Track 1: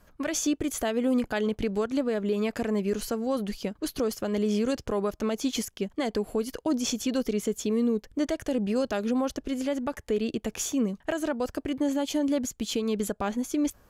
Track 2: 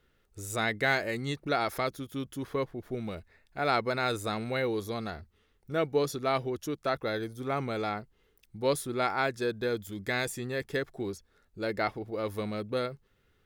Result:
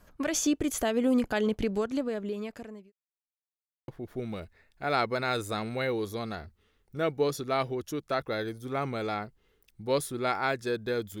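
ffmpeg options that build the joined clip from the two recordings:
ffmpeg -i cue0.wav -i cue1.wav -filter_complex "[0:a]apad=whole_dur=11.2,atrim=end=11.2,asplit=2[link_01][link_02];[link_01]atrim=end=2.92,asetpts=PTS-STARTPTS,afade=type=out:start_time=1.55:duration=1.37[link_03];[link_02]atrim=start=2.92:end=3.88,asetpts=PTS-STARTPTS,volume=0[link_04];[1:a]atrim=start=2.63:end=9.95,asetpts=PTS-STARTPTS,afade=type=in:duration=0.004:curve=hsin[link_05];[link_03][link_04][link_05]concat=n=3:v=0:a=1" out.wav

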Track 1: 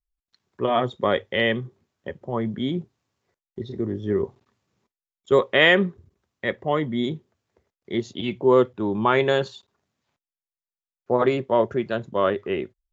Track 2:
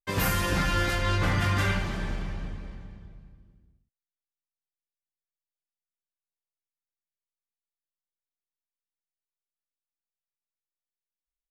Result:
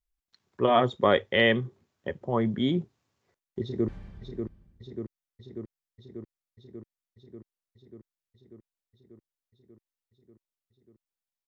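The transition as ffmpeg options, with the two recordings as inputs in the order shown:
ffmpeg -i cue0.wav -i cue1.wav -filter_complex "[0:a]apad=whole_dur=11.47,atrim=end=11.47,atrim=end=3.882[link_01];[1:a]atrim=start=2.758:end=10.35[link_02];[link_01][link_02]acrossfade=duration=0.004:curve1=hsin:curve2=hsin,asplit=2[link_03][link_04];[link_04]afade=type=in:start_time=3.62:duration=0.01,afade=type=out:start_time=3.88:duration=0.01,aecho=0:1:590|1180|1770|2360|2950|3540|4130|4720|5310|5900|6490|7080:0.473151|0.354863|0.266148|0.199611|0.149708|0.112281|0.0842108|0.0631581|0.0473686|0.0355264|0.0266448|0.0199836[link_05];[link_03][link_05]amix=inputs=2:normalize=0" out.wav

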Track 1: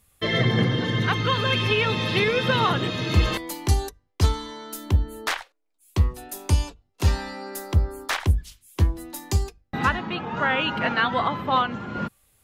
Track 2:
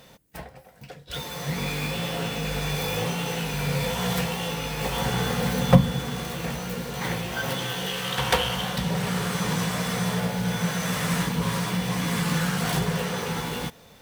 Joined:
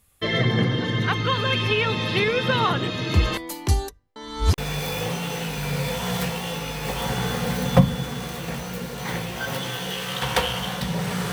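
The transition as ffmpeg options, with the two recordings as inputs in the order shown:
ffmpeg -i cue0.wav -i cue1.wav -filter_complex "[0:a]apad=whole_dur=11.32,atrim=end=11.32,asplit=2[link_01][link_02];[link_01]atrim=end=4.162[link_03];[link_02]atrim=start=4.158:end=4.582,asetpts=PTS-STARTPTS,areverse[link_04];[1:a]atrim=start=2.538:end=9.28[link_05];[link_03][link_04]acrossfade=duration=0.004:curve1=hsin:curve2=hsin[link_06];[link_06][link_05]acrossfade=duration=0.004:curve1=hsin:curve2=hsin" out.wav

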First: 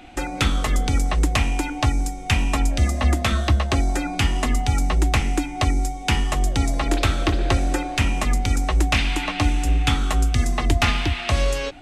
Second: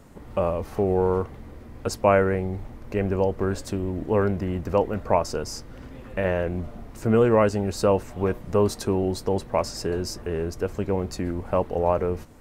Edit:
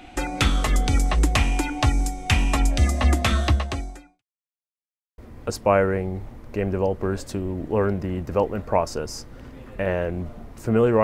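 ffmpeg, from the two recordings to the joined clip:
ffmpeg -i cue0.wav -i cue1.wav -filter_complex "[0:a]apad=whole_dur=11.03,atrim=end=11.03,asplit=2[link_01][link_02];[link_01]atrim=end=4.23,asetpts=PTS-STARTPTS,afade=type=out:start_time=3.46:duration=0.77:curve=qua[link_03];[link_02]atrim=start=4.23:end=5.18,asetpts=PTS-STARTPTS,volume=0[link_04];[1:a]atrim=start=1.56:end=7.41,asetpts=PTS-STARTPTS,afade=type=in:duration=0.004:curve=hsin[link_05];[link_03][link_04][link_05]concat=n=3:v=0:a=1" out.wav

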